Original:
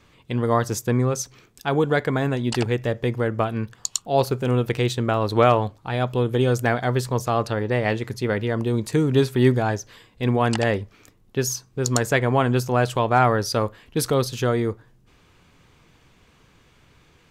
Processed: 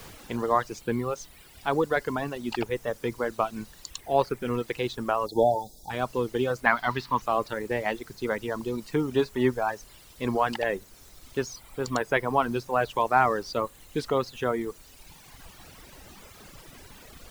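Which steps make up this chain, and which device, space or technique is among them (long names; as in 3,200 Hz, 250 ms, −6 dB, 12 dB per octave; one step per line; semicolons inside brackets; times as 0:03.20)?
horn gramophone (band-pass filter 190–3,800 Hz; parametric band 1,000 Hz +4.5 dB; tape wow and flutter; pink noise bed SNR 17 dB)
0:05.26–0:05.90: time-frequency box erased 920–3,300 Hz
reverb reduction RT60 1.8 s
0:06.66–0:07.22: octave-band graphic EQ 250/500/1,000/2,000/4,000/8,000 Hz +5/−11/+8/+6/+6/−7 dB
level −4 dB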